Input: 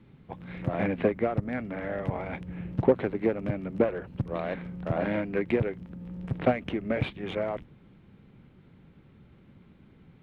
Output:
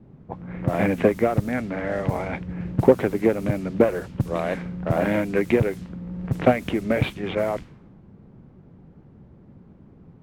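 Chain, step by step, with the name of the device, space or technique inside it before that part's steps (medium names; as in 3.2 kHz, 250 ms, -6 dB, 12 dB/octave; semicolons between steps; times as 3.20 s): cassette deck with a dynamic noise filter (white noise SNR 26 dB; level-controlled noise filter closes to 580 Hz, open at -25.5 dBFS); trim +6.5 dB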